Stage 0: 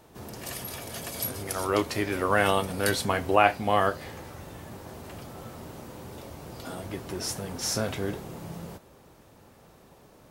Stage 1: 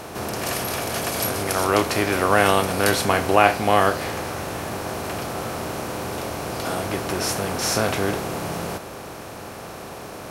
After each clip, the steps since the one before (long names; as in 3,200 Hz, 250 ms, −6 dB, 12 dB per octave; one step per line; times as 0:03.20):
compressor on every frequency bin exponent 0.6
level +3 dB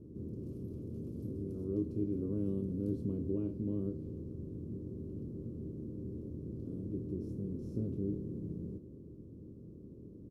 inverse Chebyshev low-pass filter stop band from 690 Hz, stop band 40 dB
double-tracking delay 26 ms −11 dB
level −8.5 dB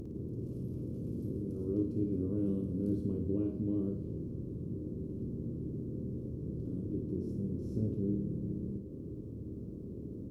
upward compression, threshold −38 dBFS
on a send: flutter between parallel walls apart 9.5 metres, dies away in 0.52 s
on the sum: level +1.5 dB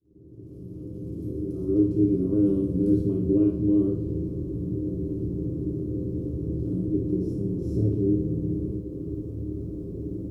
fade in at the beginning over 2.09 s
on a send at −1 dB: convolution reverb, pre-delay 3 ms
on the sum: level +5.5 dB